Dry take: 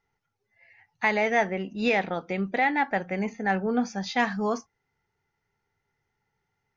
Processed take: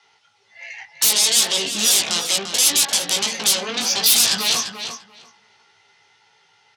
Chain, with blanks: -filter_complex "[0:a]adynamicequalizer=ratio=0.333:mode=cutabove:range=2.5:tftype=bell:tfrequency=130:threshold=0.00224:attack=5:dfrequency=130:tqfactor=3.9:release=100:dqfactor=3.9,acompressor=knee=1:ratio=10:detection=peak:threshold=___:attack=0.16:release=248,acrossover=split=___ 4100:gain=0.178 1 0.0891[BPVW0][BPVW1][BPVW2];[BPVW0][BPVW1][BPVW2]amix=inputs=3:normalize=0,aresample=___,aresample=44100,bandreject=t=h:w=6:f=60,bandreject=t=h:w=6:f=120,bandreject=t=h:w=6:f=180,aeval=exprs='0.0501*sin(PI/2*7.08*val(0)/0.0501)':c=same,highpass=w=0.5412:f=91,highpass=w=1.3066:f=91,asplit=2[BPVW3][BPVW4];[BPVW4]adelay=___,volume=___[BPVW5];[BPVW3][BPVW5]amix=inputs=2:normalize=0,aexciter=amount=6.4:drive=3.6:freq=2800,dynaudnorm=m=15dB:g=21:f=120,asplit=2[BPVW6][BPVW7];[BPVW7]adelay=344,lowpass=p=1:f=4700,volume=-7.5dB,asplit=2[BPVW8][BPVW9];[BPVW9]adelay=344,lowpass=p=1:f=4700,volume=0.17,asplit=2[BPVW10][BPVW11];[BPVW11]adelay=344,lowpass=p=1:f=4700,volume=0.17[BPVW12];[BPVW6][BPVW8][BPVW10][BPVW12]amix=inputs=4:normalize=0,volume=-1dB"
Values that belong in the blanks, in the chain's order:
-28dB, 540, 22050, 18, -5dB